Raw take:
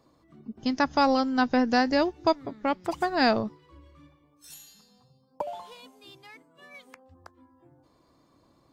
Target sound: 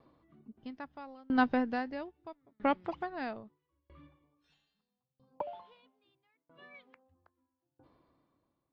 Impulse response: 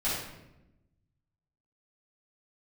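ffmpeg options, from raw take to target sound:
-af "lowpass=frequency=3500:width=0.5412,lowpass=frequency=3500:width=1.3066,aeval=exprs='val(0)*pow(10,-32*if(lt(mod(0.77*n/s,1),2*abs(0.77)/1000),1-mod(0.77*n/s,1)/(2*abs(0.77)/1000),(mod(0.77*n/s,1)-2*abs(0.77)/1000)/(1-2*abs(0.77)/1000))/20)':channel_layout=same"

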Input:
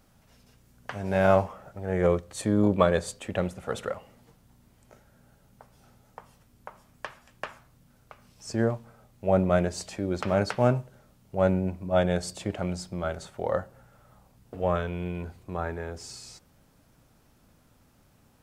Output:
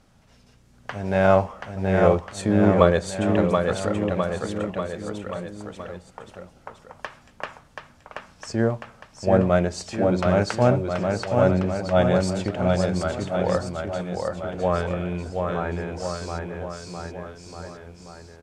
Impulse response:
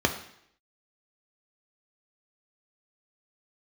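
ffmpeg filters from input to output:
-filter_complex "[0:a]lowpass=7900,asplit=2[link_01][link_02];[link_02]aecho=0:1:730|1387|1978|2510|2989:0.631|0.398|0.251|0.158|0.1[link_03];[link_01][link_03]amix=inputs=2:normalize=0,volume=3.5dB"

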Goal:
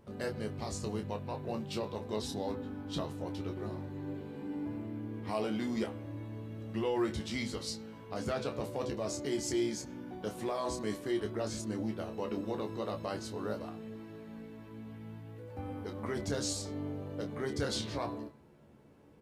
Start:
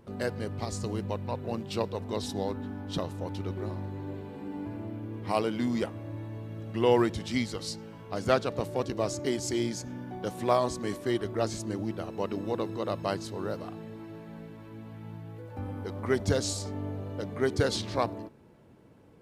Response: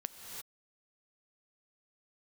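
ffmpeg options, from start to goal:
-filter_complex "[0:a]bandreject=frequency=125:width_type=h:width=4,bandreject=frequency=250:width_type=h:width=4,bandreject=frequency=375:width_type=h:width=4,bandreject=frequency=500:width_type=h:width=4,bandreject=frequency=625:width_type=h:width=4,bandreject=frequency=750:width_type=h:width=4,bandreject=frequency=875:width_type=h:width=4,bandreject=frequency=1000:width_type=h:width=4,bandreject=frequency=1125:width_type=h:width=4,bandreject=frequency=1250:width_type=h:width=4,bandreject=frequency=1375:width_type=h:width=4,bandreject=frequency=1500:width_type=h:width=4,bandreject=frequency=1625:width_type=h:width=4,bandreject=frequency=1750:width_type=h:width=4,bandreject=frequency=1875:width_type=h:width=4,bandreject=frequency=2000:width_type=h:width=4,bandreject=frequency=2125:width_type=h:width=4,bandreject=frequency=2250:width_type=h:width=4,bandreject=frequency=2375:width_type=h:width=4,bandreject=frequency=2500:width_type=h:width=4,bandreject=frequency=2625:width_type=h:width=4,bandreject=frequency=2750:width_type=h:width=4,bandreject=frequency=2875:width_type=h:width=4,bandreject=frequency=3000:width_type=h:width=4,bandreject=frequency=3125:width_type=h:width=4,bandreject=frequency=3250:width_type=h:width=4,bandreject=frequency=3375:width_type=h:width=4,bandreject=frequency=3500:width_type=h:width=4,bandreject=frequency=3625:width_type=h:width=4,bandreject=frequency=3750:width_type=h:width=4,bandreject=frequency=3875:width_type=h:width=4,bandreject=frequency=4000:width_type=h:width=4,bandreject=frequency=4125:width_type=h:width=4,bandreject=frequency=4250:width_type=h:width=4,bandreject=frequency=4375:width_type=h:width=4,alimiter=limit=-21.5dB:level=0:latency=1:release=28,asplit=2[link_01][link_02];[link_02]aecho=0:1:14|28:0.422|0.422[link_03];[link_01][link_03]amix=inputs=2:normalize=0,volume=-4dB"

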